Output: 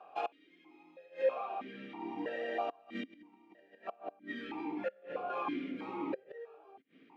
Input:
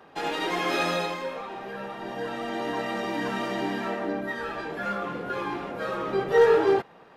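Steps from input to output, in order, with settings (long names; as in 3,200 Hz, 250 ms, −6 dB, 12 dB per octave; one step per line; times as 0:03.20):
gate with flip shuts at −20 dBFS, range −28 dB
formant filter that steps through the vowels 3.1 Hz
level +5.5 dB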